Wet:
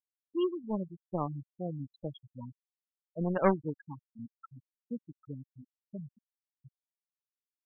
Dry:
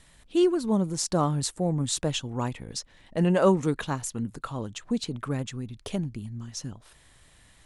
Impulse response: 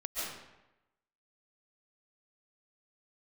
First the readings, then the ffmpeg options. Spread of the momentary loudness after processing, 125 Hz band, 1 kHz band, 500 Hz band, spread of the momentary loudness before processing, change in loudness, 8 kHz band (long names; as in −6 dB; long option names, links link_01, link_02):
20 LU, −11.0 dB, −6.5 dB, −8.0 dB, 14 LU, −8.0 dB, below −40 dB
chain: -af "aeval=exprs='0.355*(cos(1*acos(clip(val(0)/0.355,-1,1)))-cos(1*PI/2))+0.0891*(cos(3*acos(clip(val(0)/0.355,-1,1)))-cos(3*PI/2))':channel_layout=same,afftfilt=real='re*gte(hypot(re,im),0.0562)':imag='im*gte(hypot(re,im),0.0562)':win_size=1024:overlap=0.75,volume=-1dB"